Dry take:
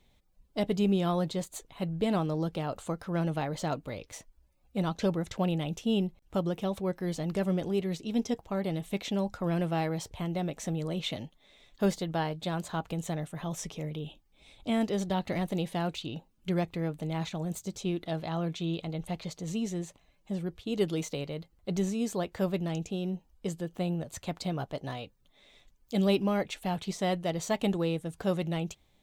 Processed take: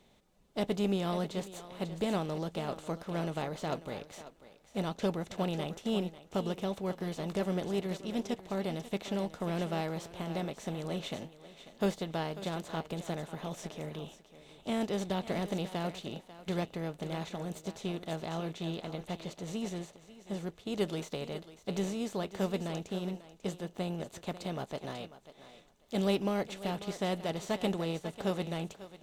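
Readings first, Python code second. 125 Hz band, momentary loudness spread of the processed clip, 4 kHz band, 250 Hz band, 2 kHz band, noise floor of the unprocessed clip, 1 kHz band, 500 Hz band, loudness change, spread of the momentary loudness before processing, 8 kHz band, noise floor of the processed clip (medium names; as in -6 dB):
-5.0 dB, 9 LU, -2.0 dB, -4.5 dB, -2.5 dB, -67 dBFS, -2.5 dB, -2.5 dB, -3.5 dB, 9 LU, -5.0 dB, -62 dBFS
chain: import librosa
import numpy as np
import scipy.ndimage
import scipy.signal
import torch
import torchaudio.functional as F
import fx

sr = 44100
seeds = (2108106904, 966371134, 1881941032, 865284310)

y = fx.bin_compress(x, sr, power=0.6)
y = fx.echo_thinned(y, sr, ms=543, feedback_pct=24, hz=260.0, wet_db=-9)
y = fx.upward_expand(y, sr, threshold_db=-43.0, expansion=1.5)
y = y * 10.0 ** (-5.0 / 20.0)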